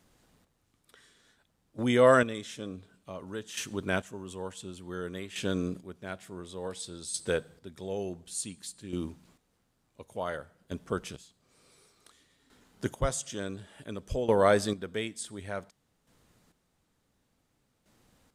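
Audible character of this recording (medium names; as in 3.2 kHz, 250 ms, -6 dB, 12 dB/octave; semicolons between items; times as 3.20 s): chopped level 0.56 Hz, depth 65%, duty 25%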